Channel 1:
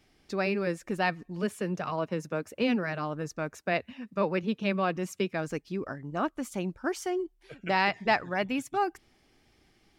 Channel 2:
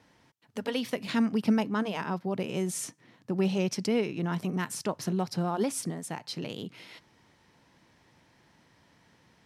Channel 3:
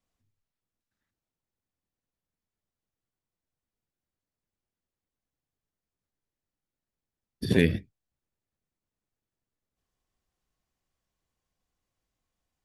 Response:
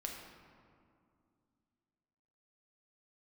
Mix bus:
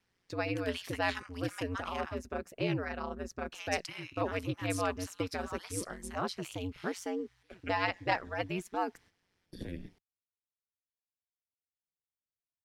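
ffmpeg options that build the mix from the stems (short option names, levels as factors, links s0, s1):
-filter_complex "[0:a]volume=0.75[s0];[1:a]highpass=f=1100:w=0.5412,highpass=f=1100:w=1.3066,volume=0.794,asplit=3[s1][s2][s3];[s1]atrim=end=2.2,asetpts=PTS-STARTPTS,afade=t=out:st=2.196:d=0.004:c=hsin[s4];[s2]atrim=start=2.2:end=3.52,asetpts=PTS-STARTPTS,volume=0[s5];[s3]atrim=start=3.52,asetpts=PTS-STARTPTS,afade=t=in:d=0.004:c=hsin[s6];[s4][s5][s6]concat=n=3:v=0:a=1[s7];[2:a]acrossover=split=230[s8][s9];[s9]acompressor=threshold=0.0398:ratio=6[s10];[s8][s10]amix=inputs=2:normalize=0,adelay=2100,volume=0.211[s11];[s0][s7][s11]amix=inputs=3:normalize=0,agate=range=0.316:threshold=0.00158:ratio=16:detection=peak,aeval=exprs='val(0)*sin(2*PI*91*n/s)':c=same"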